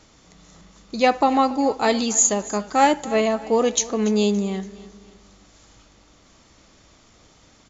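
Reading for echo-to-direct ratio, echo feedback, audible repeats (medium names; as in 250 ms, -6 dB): -17.5 dB, 42%, 3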